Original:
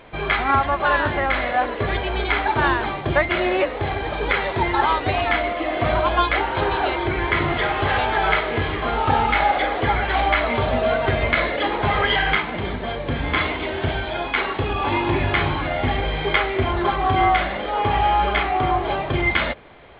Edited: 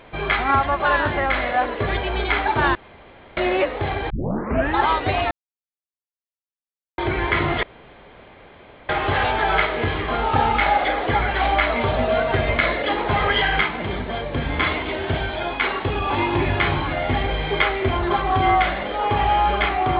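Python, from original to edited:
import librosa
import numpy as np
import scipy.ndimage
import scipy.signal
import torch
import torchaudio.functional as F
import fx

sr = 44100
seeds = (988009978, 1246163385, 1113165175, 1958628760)

y = fx.edit(x, sr, fx.room_tone_fill(start_s=2.75, length_s=0.62),
    fx.tape_start(start_s=4.1, length_s=0.68),
    fx.silence(start_s=5.31, length_s=1.67),
    fx.insert_room_tone(at_s=7.63, length_s=1.26), tone=tone)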